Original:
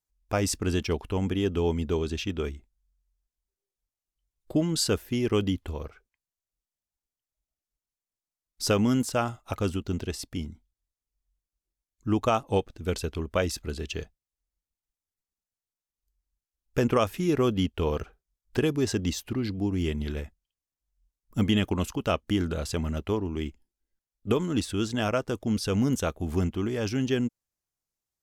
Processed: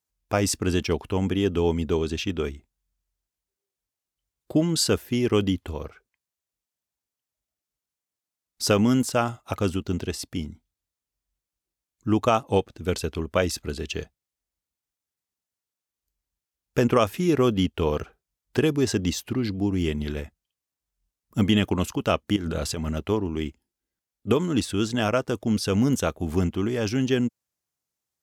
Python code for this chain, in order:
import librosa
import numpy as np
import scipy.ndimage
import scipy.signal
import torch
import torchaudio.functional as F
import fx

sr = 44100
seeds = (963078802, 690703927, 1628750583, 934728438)

y = scipy.signal.sosfilt(scipy.signal.butter(2, 79.0, 'highpass', fs=sr, output='sos'), x)
y = fx.over_compress(y, sr, threshold_db=-32.0, ratio=-1.0, at=(22.36, 22.89))
y = y * librosa.db_to_amplitude(3.5)